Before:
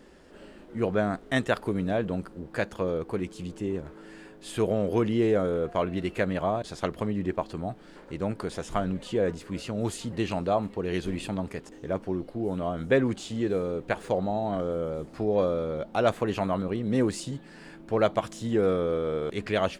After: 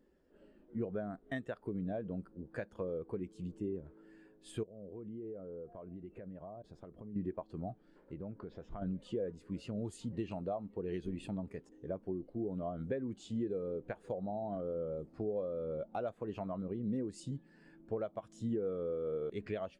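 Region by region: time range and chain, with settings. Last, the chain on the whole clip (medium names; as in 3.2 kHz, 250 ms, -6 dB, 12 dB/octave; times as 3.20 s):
4.63–7.16 s: treble shelf 2.1 kHz -11 dB + compression 10:1, threshold -35 dBFS
8.13–8.82 s: distance through air 170 m + compression 5:1, threshold -32 dBFS
whole clip: treble shelf 6.3 kHz +3.5 dB; compression 12:1, threshold -29 dBFS; spectral contrast expander 1.5:1; trim -6 dB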